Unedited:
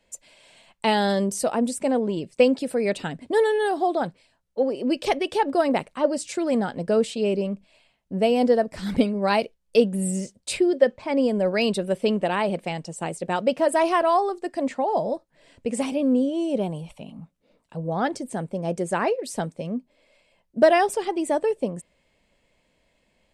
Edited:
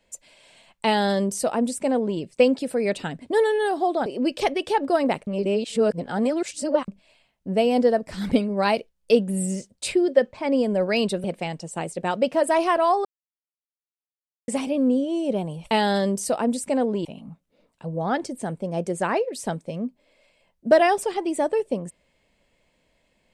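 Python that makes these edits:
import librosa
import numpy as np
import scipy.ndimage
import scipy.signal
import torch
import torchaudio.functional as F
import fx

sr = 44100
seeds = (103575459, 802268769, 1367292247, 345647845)

y = fx.edit(x, sr, fx.duplicate(start_s=0.85, length_s=1.34, to_s=16.96),
    fx.cut(start_s=4.06, length_s=0.65),
    fx.reverse_span(start_s=5.92, length_s=1.61),
    fx.cut(start_s=11.89, length_s=0.6),
    fx.silence(start_s=14.3, length_s=1.43), tone=tone)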